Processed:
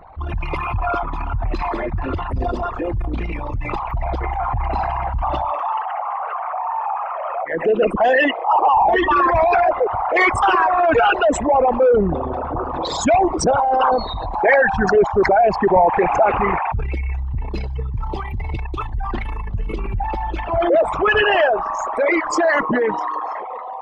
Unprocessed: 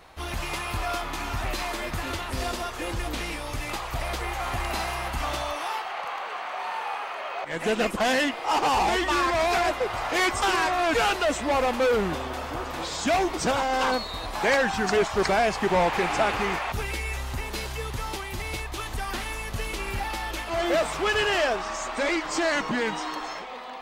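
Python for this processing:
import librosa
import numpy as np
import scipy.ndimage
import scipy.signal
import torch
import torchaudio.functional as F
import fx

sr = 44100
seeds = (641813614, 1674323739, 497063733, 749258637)

y = fx.envelope_sharpen(x, sr, power=3.0)
y = y * 10.0 ** (8.5 / 20.0)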